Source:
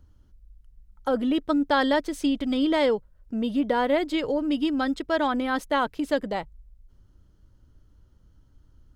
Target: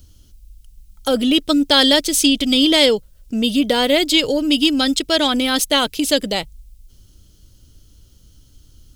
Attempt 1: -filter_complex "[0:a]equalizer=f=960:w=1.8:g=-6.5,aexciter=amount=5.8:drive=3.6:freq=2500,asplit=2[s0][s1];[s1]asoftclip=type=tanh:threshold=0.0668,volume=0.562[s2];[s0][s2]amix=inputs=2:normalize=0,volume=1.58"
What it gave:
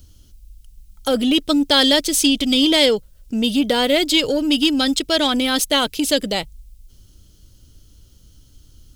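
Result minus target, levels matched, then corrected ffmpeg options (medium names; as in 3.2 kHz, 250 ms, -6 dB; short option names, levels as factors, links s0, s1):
saturation: distortion +12 dB
-filter_complex "[0:a]equalizer=f=960:w=1.8:g=-6.5,aexciter=amount=5.8:drive=3.6:freq=2500,asplit=2[s0][s1];[s1]asoftclip=type=tanh:threshold=0.224,volume=0.562[s2];[s0][s2]amix=inputs=2:normalize=0,volume=1.58"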